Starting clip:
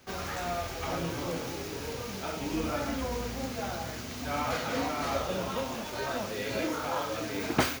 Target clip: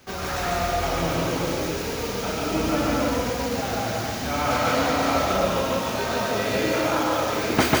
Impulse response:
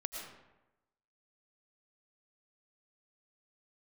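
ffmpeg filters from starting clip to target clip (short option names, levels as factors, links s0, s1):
-filter_complex "[0:a]asplit=2[s0][s1];[1:a]atrim=start_sample=2205,adelay=144[s2];[s1][s2]afir=irnorm=-1:irlink=0,volume=1.26[s3];[s0][s3]amix=inputs=2:normalize=0,volume=1.78"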